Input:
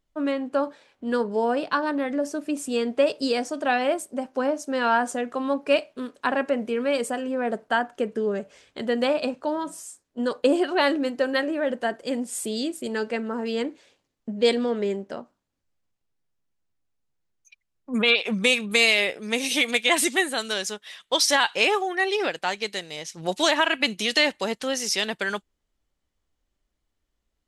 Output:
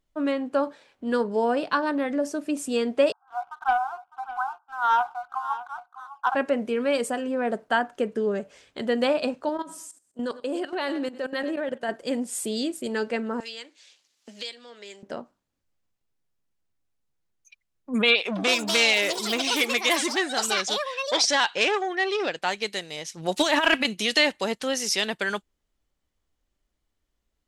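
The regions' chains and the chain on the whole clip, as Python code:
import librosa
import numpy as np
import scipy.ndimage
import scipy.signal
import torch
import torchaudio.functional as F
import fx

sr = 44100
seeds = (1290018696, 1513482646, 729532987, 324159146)

y = fx.chain(x, sr, fx.brickwall_bandpass(low_hz=710.0, high_hz=1600.0),
    fx.leveller(passes=1),
    fx.echo_single(ms=605, db=-14.5), at=(3.12, 6.35))
y = fx.chain(y, sr, fx.highpass(hz=120.0, slope=6),
    fx.echo_feedback(ms=101, feedback_pct=30, wet_db=-18),
    fx.level_steps(step_db=14), at=(9.49, 11.89))
y = fx.chain(y, sr, fx.bandpass_q(hz=5300.0, q=0.93),
    fx.band_squash(depth_pct=100), at=(13.4, 15.03))
y = fx.chain(y, sr, fx.lowpass(hz=7400.0, slope=24),
    fx.echo_pitch(ms=85, semitones=6, count=3, db_per_echo=-6.0),
    fx.transformer_sat(knee_hz=2600.0), at=(18.27, 22.42))
y = fx.chain(y, sr, fx.over_compress(threshold_db=-23.0, ratio=-0.5),
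    fx.leveller(passes=1), at=(23.34, 23.85))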